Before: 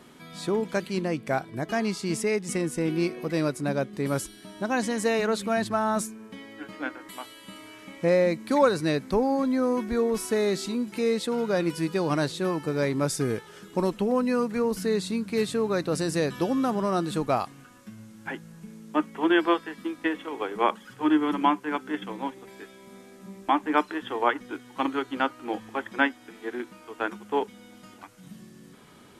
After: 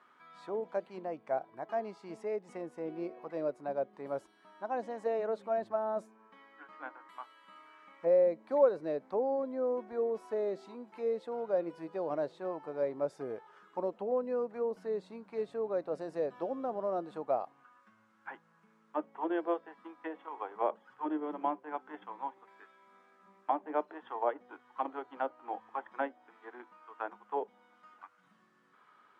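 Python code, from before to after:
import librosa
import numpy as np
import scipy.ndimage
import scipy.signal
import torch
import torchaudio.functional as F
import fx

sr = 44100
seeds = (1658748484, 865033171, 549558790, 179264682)

y = fx.auto_wah(x, sr, base_hz=580.0, top_hz=1300.0, q=2.6, full_db=-21.0, direction='down')
y = y * librosa.db_to_amplitude(-2.5)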